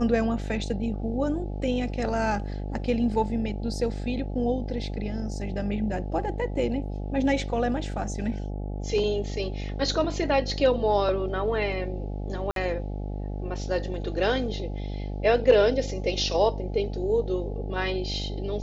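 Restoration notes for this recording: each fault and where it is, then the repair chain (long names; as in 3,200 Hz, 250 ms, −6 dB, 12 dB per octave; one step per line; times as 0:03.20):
mains buzz 50 Hz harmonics 17 −32 dBFS
0:12.51–0:12.56: drop-out 52 ms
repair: hum removal 50 Hz, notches 17
repair the gap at 0:12.51, 52 ms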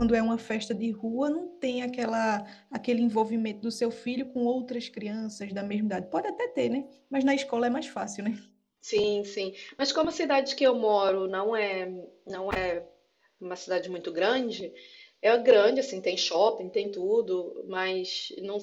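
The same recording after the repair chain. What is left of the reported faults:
none of them is left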